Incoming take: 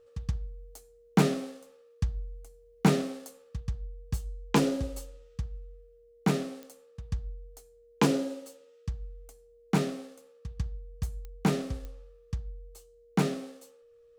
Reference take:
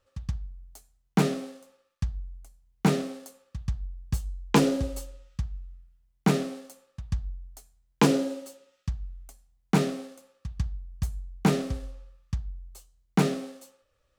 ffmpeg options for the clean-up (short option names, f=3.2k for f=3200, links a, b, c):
-af "adeclick=t=4,bandreject=f=470:w=30,asetnsamples=n=441:p=0,asendcmd='3.6 volume volume 3.5dB',volume=0dB"